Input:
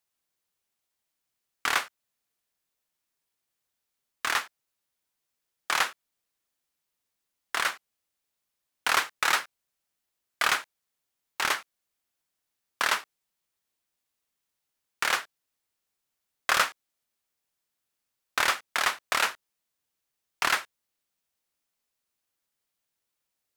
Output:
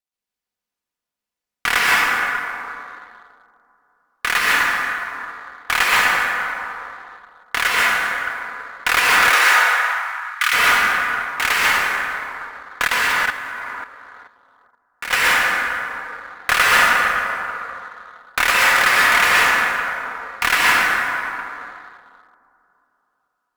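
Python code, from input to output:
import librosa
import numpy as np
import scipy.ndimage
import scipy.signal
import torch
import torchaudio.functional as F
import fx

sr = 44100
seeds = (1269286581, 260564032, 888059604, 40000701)

y = fx.dead_time(x, sr, dead_ms=0.057)
y = fx.rev_plate(y, sr, seeds[0], rt60_s=3.3, hf_ratio=0.4, predelay_ms=110, drr_db=-6.5)
y = fx.leveller(y, sr, passes=1)
y = y + 0.37 * np.pad(y, (int(4.1 * sr / 1000.0), 0))[:len(y)]
y = fx.cheby_harmonics(y, sr, harmonics=(8,), levels_db=(-26,), full_scale_db=-2.0)
y = fx.highpass(y, sr, hz=fx.line((9.29, 280.0), (10.52, 1200.0)), slope=24, at=(9.29, 10.52), fade=0.02)
y = fx.level_steps(y, sr, step_db=11, at=(12.85, 15.11))
y = fx.dynamic_eq(y, sr, hz=2100.0, q=1.2, threshold_db=-52.0, ratio=4.0, max_db=7)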